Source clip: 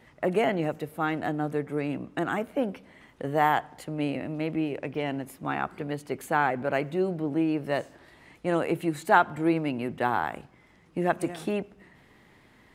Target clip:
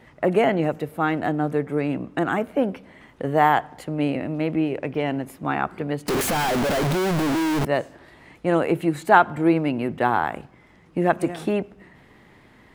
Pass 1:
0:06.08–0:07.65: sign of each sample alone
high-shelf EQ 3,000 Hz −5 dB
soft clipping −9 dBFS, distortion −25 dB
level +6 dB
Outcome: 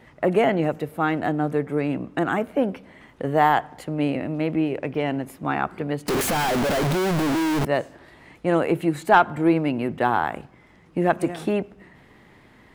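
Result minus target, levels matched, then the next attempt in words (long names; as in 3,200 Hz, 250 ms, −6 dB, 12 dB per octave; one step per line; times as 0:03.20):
soft clipping: distortion +14 dB
0:06.08–0:07.65: sign of each sample alone
high-shelf EQ 3,000 Hz −5 dB
soft clipping −1 dBFS, distortion −39 dB
level +6 dB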